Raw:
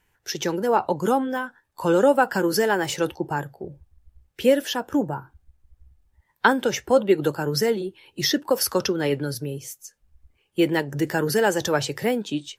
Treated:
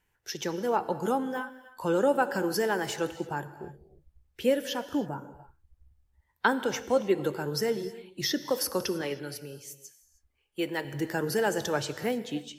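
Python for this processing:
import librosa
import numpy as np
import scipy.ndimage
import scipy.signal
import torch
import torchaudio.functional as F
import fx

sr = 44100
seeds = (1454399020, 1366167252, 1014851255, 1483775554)

y = fx.low_shelf(x, sr, hz=330.0, db=-9.0, at=(9.01, 10.85))
y = fx.rev_gated(y, sr, seeds[0], gate_ms=340, shape='flat', drr_db=12.0)
y = y * librosa.db_to_amplitude(-7.0)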